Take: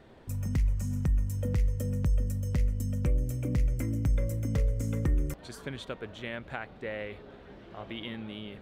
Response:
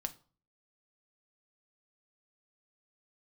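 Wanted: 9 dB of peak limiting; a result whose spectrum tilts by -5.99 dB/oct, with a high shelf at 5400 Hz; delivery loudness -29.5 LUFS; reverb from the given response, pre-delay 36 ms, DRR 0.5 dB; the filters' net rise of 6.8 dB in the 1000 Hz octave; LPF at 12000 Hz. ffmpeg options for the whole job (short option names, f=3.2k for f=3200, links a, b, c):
-filter_complex "[0:a]lowpass=12k,equalizer=f=1k:t=o:g=9,highshelf=f=5.4k:g=7.5,alimiter=limit=-23.5dB:level=0:latency=1,asplit=2[a][b];[1:a]atrim=start_sample=2205,adelay=36[c];[b][c]afir=irnorm=-1:irlink=0,volume=0dB[d];[a][d]amix=inputs=2:normalize=0,volume=1dB"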